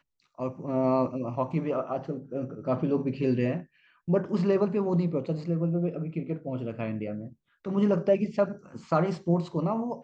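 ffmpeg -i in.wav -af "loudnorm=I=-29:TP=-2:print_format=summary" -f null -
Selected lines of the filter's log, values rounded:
Input Integrated:    -28.4 LUFS
Input True Peak:     -11.2 dBTP
Input LRA:             2.2 LU
Input Threshold:     -38.8 LUFS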